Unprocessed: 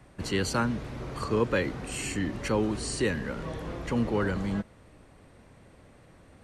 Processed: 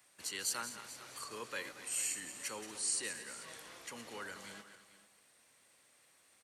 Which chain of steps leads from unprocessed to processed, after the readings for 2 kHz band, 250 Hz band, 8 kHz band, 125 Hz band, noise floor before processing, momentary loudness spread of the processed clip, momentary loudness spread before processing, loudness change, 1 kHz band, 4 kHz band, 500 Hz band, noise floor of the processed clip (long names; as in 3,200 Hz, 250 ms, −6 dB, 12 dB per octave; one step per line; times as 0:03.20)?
−10.0 dB, −25.5 dB, +2.5 dB, −31.0 dB, −56 dBFS, 14 LU, 9 LU, −10.0 dB, −13.0 dB, −5.0 dB, −20.0 dB, −68 dBFS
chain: feedback delay that plays each chunk backwards 116 ms, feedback 56%, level −11 dB
first difference
on a send: single-tap delay 440 ms −17 dB
on the sum: dynamic equaliser 3,700 Hz, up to −4 dB, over −53 dBFS, Q 0.71
level +3 dB